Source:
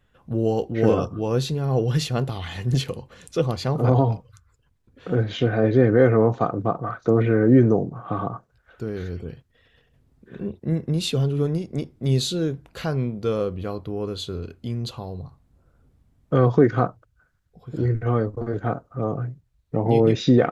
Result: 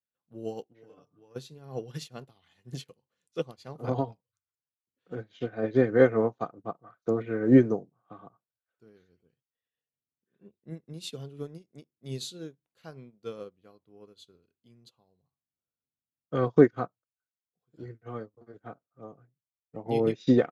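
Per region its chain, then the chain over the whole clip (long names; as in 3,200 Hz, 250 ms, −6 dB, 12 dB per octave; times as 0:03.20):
0:00.72–0:01.36: comb filter 6.8 ms, depth 44% + downward compressor, threshold −25 dBFS
whole clip: high-pass filter 150 Hz 12 dB per octave; high-shelf EQ 2,900 Hz +6 dB; expander for the loud parts 2.5 to 1, over −36 dBFS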